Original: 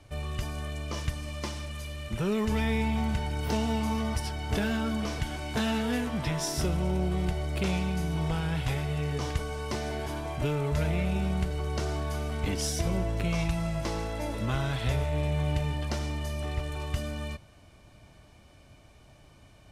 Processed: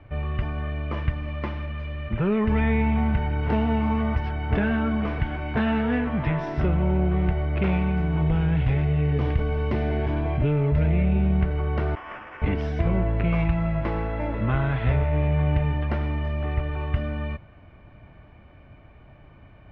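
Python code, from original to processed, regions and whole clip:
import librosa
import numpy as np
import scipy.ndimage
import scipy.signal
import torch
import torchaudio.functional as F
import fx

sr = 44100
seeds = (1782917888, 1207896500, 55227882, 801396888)

y = fx.chain(x, sr, fx.peak_eq(hz=1200.0, db=-8.5, octaves=1.8),
    fx.env_flatten(amount_pct=50), at=(8.22, 11.41))
y = fx.chain(y, sr, fx.lower_of_two(delay_ms=7.9),
    fx.highpass(hz=1100.0, slope=12),
    fx.sample_hold(seeds[0], rate_hz=4100.0, jitter_pct=0), at=(11.95, 12.42))
y = scipy.signal.sosfilt(scipy.signal.butter(4, 2300.0, 'lowpass', fs=sr, output='sos'), y)
y = fx.peak_eq(y, sr, hz=590.0, db=-2.5, octaves=2.7)
y = y * librosa.db_to_amplitude(7.0)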